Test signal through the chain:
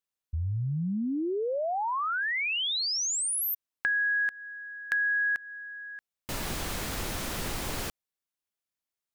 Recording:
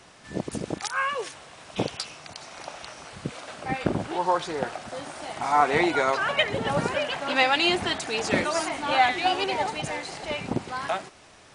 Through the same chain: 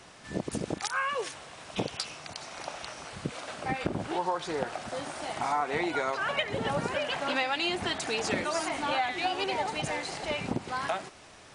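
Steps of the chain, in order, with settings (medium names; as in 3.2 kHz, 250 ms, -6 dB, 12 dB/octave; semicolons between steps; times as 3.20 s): compression 4:1, threshold -27 dBFS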